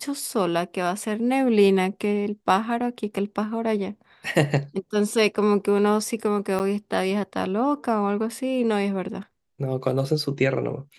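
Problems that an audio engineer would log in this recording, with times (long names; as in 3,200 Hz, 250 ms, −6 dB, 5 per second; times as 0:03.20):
0:06.59–0:06.60: drop-out 9 ms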